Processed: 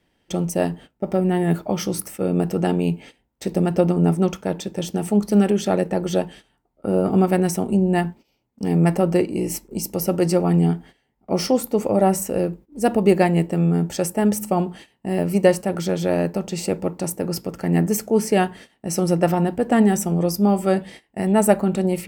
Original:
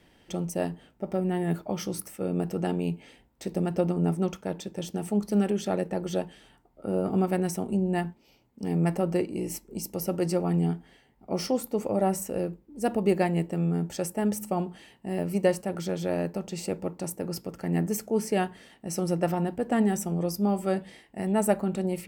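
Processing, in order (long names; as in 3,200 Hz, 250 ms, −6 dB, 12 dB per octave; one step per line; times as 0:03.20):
noise gate −47 dBFS, range −15 dB
level +8 dB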